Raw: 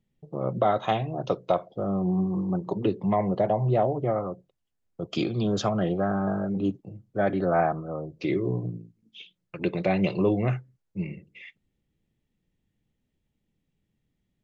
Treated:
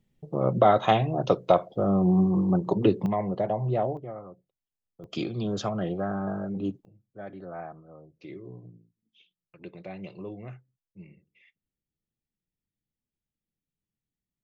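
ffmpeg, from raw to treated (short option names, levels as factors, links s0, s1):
-af "asetnsamples=n=441:p=0,asendcmd='3.06 volume volume -3.5dB;3.97 volume volume -12.5dB;5.04 volume volume -4dB;6.85 volume volume -16dB',volume=1.58"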